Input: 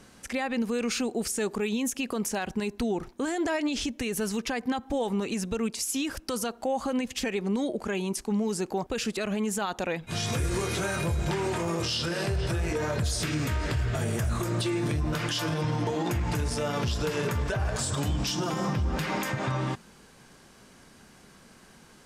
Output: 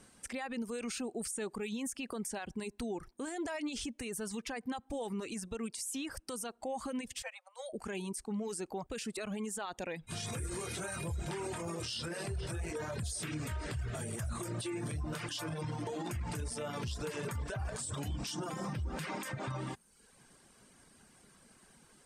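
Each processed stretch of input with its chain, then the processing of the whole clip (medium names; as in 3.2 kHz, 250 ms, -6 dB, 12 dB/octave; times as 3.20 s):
7.22–7.73 s: Chebyshev high-pass 500 Hz, order 10 + upward expansion, over -48 dBFS
whole clip: reverb removal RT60 0.68 s; peaking EQ 8.7 kHz +12.5 dB 0.24 oct; peak limiter -23 dBFS; trim -7.5 dB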